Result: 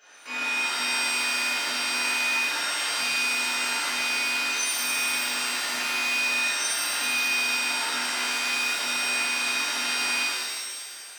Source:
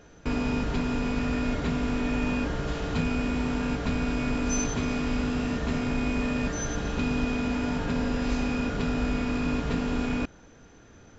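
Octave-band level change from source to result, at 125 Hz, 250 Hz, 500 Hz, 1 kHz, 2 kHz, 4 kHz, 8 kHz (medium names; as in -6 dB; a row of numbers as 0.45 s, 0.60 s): under -30 dB, -17.0 dB, -8.5 dB, +4.0 dB, +11.5 dB, +15.0 dB, no reading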